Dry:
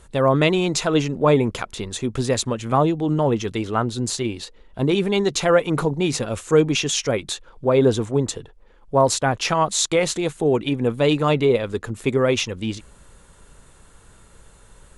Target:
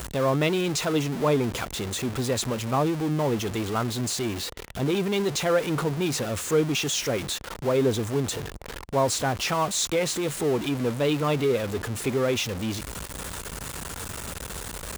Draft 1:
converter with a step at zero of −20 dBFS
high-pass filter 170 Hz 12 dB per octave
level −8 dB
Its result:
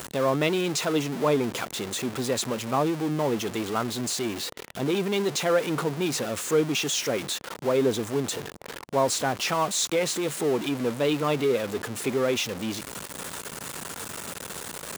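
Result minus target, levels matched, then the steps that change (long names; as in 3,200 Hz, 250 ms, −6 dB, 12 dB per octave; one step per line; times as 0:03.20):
125 Hz band −4.5 dB
change: high-pass filter 47 Hz 12 dB per octave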